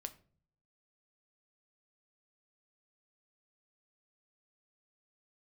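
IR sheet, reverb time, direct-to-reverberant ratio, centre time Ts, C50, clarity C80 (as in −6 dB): non-exponential decay, 8.0 dB, 5 ms, 17.0 dB, 21.0 dB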